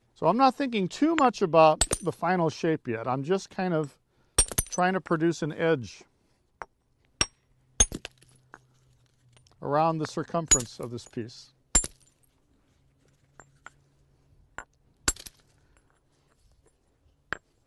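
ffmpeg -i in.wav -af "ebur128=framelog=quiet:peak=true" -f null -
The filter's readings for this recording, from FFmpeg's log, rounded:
Integrated loudness:
  I:         -26.0 LUFS
  Threshold: -38.8 LUFS
Loudness range:
  LRA:        13.2 LU
  Threshold: -49.3 LUFS
  LRA low:   -38.4 LUFS
  LRA high:  -25.2 LUFS
True peak:
  Peak:       -5.9 dBFS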